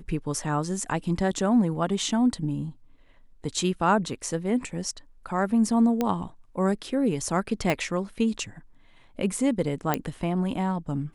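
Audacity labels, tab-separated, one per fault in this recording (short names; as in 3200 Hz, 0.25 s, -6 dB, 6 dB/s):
6.010000	6.010000	pop -12 dBFS
7.700000	7.700000	pop -11 dBFS
9.940000	9.940000	pop -8 dBFS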